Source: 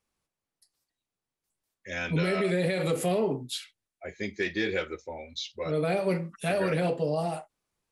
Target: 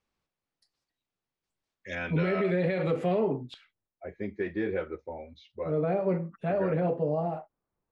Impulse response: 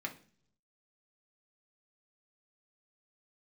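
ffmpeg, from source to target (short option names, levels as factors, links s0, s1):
-af "asetnsamples=n=441:p=0,asendcmd='1.95 lowpass f 2200;3.54 lowpass f 1200',lowpass=4900"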